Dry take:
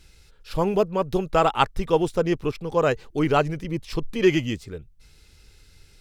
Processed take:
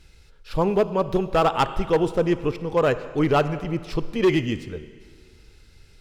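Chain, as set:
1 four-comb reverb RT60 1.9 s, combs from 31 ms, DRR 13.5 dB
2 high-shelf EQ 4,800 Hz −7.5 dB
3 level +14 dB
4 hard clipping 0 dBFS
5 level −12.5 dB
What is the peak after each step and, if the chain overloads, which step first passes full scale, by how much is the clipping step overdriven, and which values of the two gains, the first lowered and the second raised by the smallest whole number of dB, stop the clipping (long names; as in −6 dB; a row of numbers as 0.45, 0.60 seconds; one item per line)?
−5.0, −6.0, +8.0, 0.0, −12.5 dBFS
step 3, 8.0 dB
step 3 +6 dB, step 5 −4.5 dB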